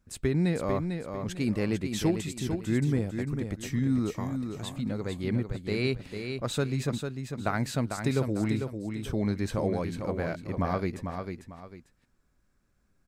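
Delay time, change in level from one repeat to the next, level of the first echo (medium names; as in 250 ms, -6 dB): 448 ms, -10.0 dB, -6.5 dB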